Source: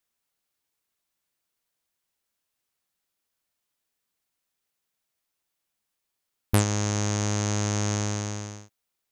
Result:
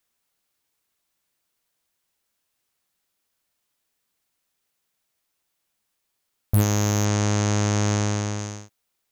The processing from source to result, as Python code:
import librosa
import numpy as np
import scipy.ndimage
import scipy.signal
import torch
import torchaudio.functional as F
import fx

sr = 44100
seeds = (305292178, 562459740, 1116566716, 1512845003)

y = fx.high_shelf(x, sr, hz=5200.0, db=-6.0, at=(7.05, 8.39))
y = 10.0 ** (-17.0 / 20.0) * (np.abs((y / 10.0 ** (-17.0 / 20.0) + 3.0) % 4.0 - 2.0) - 1.0)
y = F.gain(torch.from_numpy(y), 5.0).numpy()